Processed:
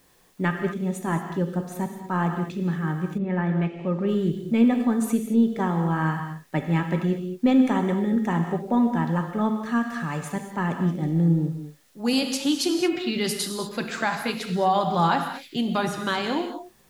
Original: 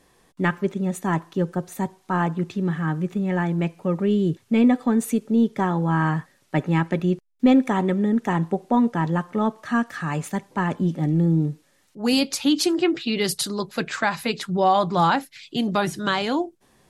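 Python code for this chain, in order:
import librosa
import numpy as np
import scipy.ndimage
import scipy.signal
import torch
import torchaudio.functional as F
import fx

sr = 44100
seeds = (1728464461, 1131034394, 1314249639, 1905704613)

y = fx.rev_gated(x, sr, seeds[0], gate_ms=250, shape='flat', drr_db=5.0)
y = fx.quant_dither(y, sr, seeds[1], bits=10, dither='triangular')
y = fx.lowpass(y, sr, hz=fx.line((3.17, 2200.0), (4.07, 5000.0)), slope=12, at=(3.17, 4.07), fade=0.02)
y = y * librosa.db_to_amplitude(-3.5)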